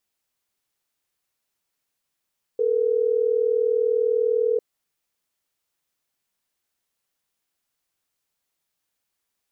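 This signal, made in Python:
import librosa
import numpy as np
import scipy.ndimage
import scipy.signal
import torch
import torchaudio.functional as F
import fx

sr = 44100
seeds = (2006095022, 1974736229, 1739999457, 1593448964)

y = fx.call_progress(sr, length_s=3.12, kind='ringback tone', level_db=-21.0)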